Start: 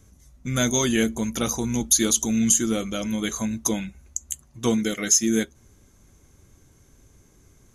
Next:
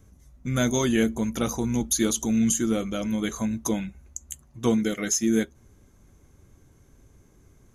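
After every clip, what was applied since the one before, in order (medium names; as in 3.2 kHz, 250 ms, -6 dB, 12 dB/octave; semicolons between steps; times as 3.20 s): peaking EQ 6.7 kHz -7 dB 2.8 oct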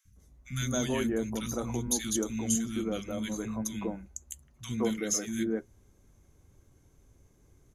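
three bands offset in time highs, lows, mids 50/160 ms, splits 220/1500 Hz; trim -5 dB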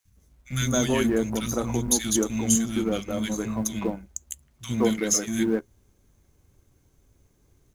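companding laws mixed up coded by A; trim +8 dB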